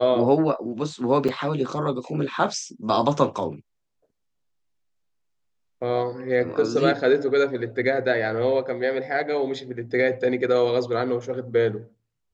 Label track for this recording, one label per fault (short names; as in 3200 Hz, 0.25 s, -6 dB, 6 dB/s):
1.280000	1.290000	gap 5.7 ms